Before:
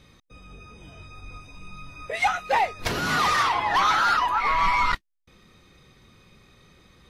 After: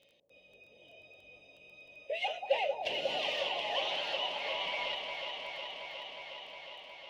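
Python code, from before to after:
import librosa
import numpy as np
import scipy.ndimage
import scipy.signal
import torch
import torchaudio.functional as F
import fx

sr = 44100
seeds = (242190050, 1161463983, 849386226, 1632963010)

p1 = fx.double_bandpass(x, sr, hz=1300.0, octaves=2.3)
p2 = p1 + fx.echo_alternate(p1, sr, ms=181, hz=990.0, feedback_pct=89, wet_db=-5.0, dry=0)
p3 = fx.dmg_crackle(p2, sr, seeds[0], per_s=12.0, level_db=-50.0)
y = p3 * 10.0 ** (1.5 / 20.0)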